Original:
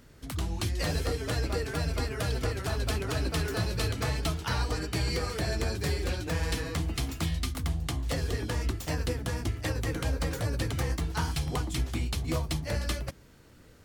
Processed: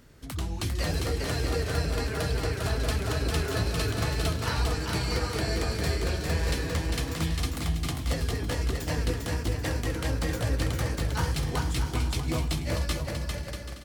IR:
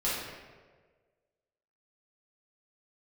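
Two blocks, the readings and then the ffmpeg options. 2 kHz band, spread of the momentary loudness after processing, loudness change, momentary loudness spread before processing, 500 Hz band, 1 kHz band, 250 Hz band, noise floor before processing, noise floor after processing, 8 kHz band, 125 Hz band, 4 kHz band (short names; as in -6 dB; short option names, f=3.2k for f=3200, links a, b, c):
+2.0 dB, 2 LU, +2.0 dB, 2 LU, +2.0 dB, +2.0 dB, +2.0 dB, -54 dBFS, -37 dBFS, +2.0 dB, +2.0 dB, +2.0 dB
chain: -filter_complex "[0:a]asplit=2[a][b];[b]aecho=0:1:400|640|784|870.4|922.2:0.631|0.398|0.251|0.158|0.1[c];[a][c]amix=inputs=2:normalize=0"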